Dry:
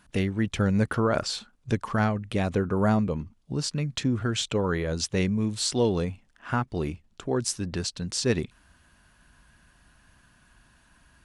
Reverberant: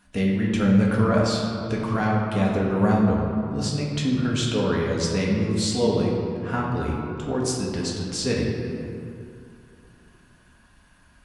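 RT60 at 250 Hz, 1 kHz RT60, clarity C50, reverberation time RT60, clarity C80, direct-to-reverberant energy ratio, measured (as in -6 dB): 3.1 s, 2.4 s, 0.5 dB, 2.4 s, 2.0 dB, -4.0 dB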